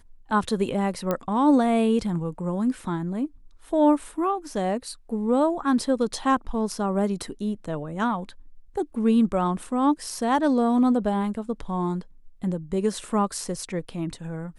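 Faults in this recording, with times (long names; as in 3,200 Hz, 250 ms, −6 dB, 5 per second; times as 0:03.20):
0:01.11: click −12 dBFS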